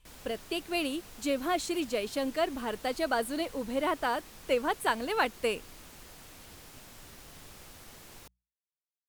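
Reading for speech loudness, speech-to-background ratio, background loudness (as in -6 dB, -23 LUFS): -32.0 LUFS, 17.5 dB, -49.5 LUFS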